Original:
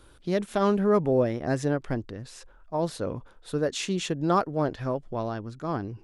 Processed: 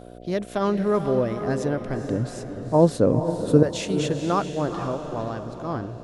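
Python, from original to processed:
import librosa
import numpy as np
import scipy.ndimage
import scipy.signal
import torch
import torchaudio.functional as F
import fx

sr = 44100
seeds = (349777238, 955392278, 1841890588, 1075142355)

y = fx.graphic_eq(x, sr, hz=(125, 250, 500, 1000, 8000), db=(12, 11, 9, 4, 5), at=(2.07, 3.63))
y = fx.echo_diffused(y, sr, ms=465, feedback_pct=41, wet_db=-8.0)
y = fx.dmg_buzz(y, sr, base_hz=60.0, harmonics=12, level_db=-43.0, tilt_db=0, odd_only=False)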